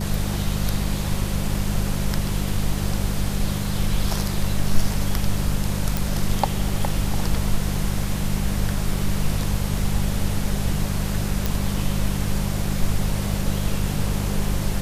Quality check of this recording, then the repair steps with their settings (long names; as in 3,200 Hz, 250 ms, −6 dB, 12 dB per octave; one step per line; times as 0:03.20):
mains hum 50 Hz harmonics 4 −26 dBFS
0:05.97: click
0:11.46: click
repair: click removal
hum removal 50 Hz, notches 4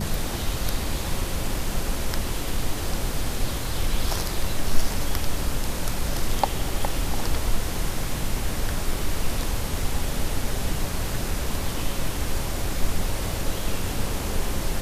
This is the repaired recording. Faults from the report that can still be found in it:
none of them is left